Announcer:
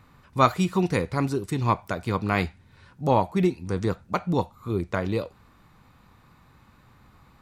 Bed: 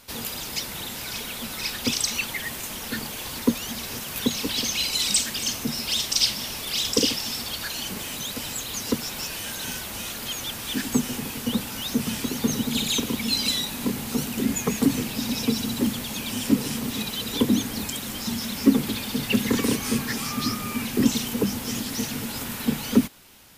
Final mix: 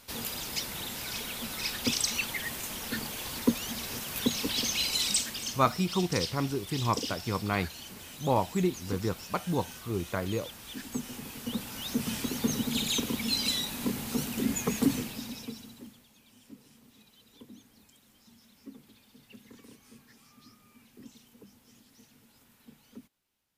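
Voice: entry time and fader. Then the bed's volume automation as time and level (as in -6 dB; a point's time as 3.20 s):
5.20 s, -5.5 dB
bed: 4.96 s -4 dB
5.91 s -13.5 dB
10.79 s -13.5 dB
12.13 s -5 dB
14.91 s -5 dB
16.12 s -30 dB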